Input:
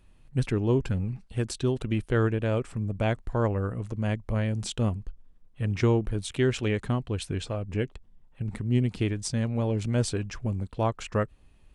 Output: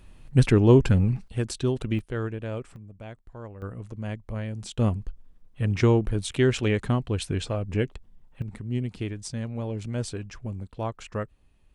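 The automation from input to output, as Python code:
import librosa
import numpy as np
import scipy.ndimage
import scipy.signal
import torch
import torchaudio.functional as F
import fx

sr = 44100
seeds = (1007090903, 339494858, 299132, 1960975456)

y = fx.gain(x, sr, db=fx.steps((0.0, 8.0), (1.28, 1.0), (1.99, -6.0), (2.76, -15.0), (3.62, -5.0), (4.78, 3.0), (8.42, -4.5)))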